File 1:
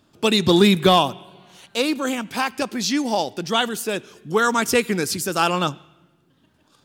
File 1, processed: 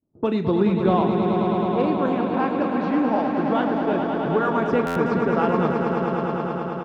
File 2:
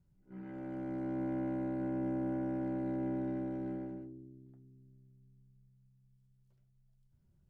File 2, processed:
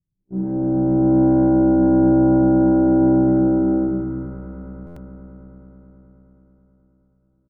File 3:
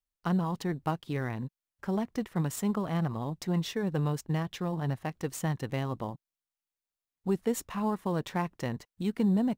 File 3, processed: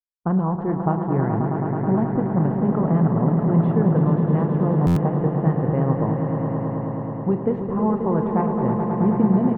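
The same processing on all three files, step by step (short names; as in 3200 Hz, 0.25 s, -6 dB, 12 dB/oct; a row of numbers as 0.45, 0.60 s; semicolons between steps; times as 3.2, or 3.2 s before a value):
LPF 1200 Hz 12 dB/oct; low-pass opened by the level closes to 480 Hz, open at -18.5 dBFS; expander -49 dBFS; compressor 2:1, threshold -32 dBFS; doubler 37 ms -12 dB; swelling echo 0.107 s, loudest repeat 5, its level -8 dB; stuck buffer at 4.86, samples 512, times 8; normalise peaks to -6 dBFS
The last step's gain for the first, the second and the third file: +5.5, +22.5, +11.5 dB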